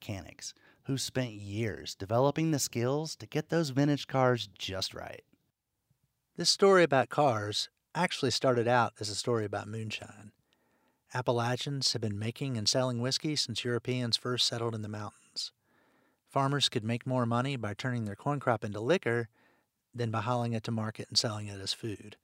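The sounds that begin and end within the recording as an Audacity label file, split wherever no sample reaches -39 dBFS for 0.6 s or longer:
6.390000	10.190000	sound
11.130000	15.470000	sound
16.360000	19.240000	sound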